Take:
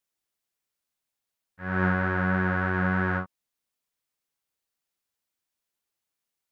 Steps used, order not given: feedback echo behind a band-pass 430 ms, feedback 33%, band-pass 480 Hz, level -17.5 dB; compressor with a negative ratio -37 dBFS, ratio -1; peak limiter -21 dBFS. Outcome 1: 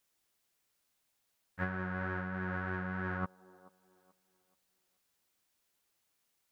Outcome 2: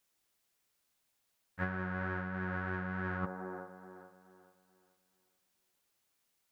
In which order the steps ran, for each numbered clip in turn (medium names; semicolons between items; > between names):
peak limiter > compressor with a negative ratio > feedback echo behind a band-pass; feedback echo behind a band-pass > peak limiter > compressor with a negative ratio